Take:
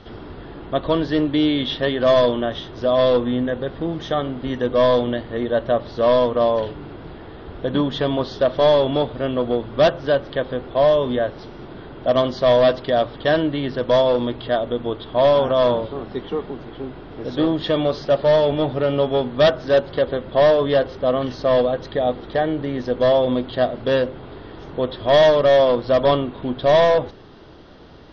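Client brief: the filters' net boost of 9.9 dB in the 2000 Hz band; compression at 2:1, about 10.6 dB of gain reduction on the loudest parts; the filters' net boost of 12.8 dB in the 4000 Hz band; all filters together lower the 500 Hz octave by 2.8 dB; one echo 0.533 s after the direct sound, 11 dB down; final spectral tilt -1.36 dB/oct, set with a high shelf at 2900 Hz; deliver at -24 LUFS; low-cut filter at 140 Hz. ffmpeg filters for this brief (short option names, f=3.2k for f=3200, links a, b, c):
-af "highpass=140,equalizer=f=500:t=o:g=-4.5,equalizer=f=2k:t=o:g=8.5,highshelf=f=2.9k:g=6,equalizer=f=4k:t=o:g=8.5,acompressor=threshold=-27dB:ratio=2,aecho=1:1:533:0.282,volume=1.5dB"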